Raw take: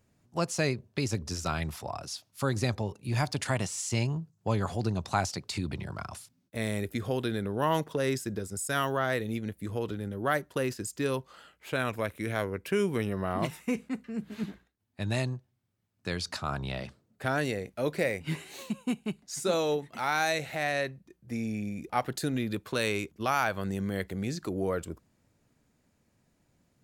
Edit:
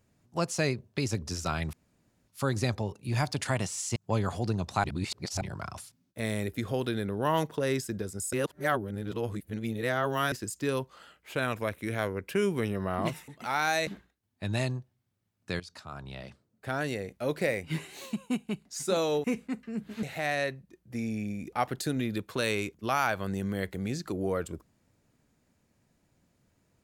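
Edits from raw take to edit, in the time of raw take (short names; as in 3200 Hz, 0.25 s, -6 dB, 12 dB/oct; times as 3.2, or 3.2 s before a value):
1.73–2.28 room tone
3.96–4.33 cut
5.21–5.78 reverse
8.7–10.69 reverse
13.65–14.44 swap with 19.81–20.4
16.17–17.96 fade in linear, from -14.5 dB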